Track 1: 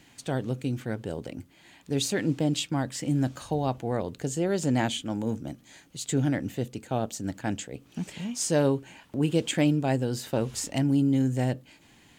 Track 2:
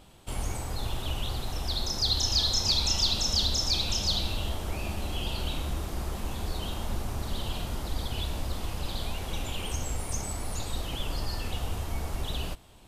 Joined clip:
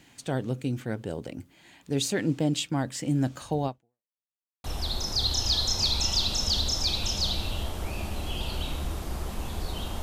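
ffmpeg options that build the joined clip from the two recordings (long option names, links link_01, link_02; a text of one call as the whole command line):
ffmpeg -i cue0.wav -i cue1.wav -filter_complex "[0:a]apad=whole_dur=10.02,atrim=end=10.02,asplit=2[link_01][link_02];[link_01]atrim=end=4.14,asetpts=PTS-STARTPTS,afade=type=out:start_time=3.66:duration=0.48:curve=exp[link_03];[link_02]atrim=start=4.14:end=4.64,asetpts=PTS-STARTPTS,volume=0[link_04];[1:a]atrim=start=1.5:end=6.88,asetpts=PTS-STARTPTS,afade=type=in:duration=0.004:curve=hsin[link_05];[link_03][link_04][link_05]concat=n=3:v=0:a=1" out.wav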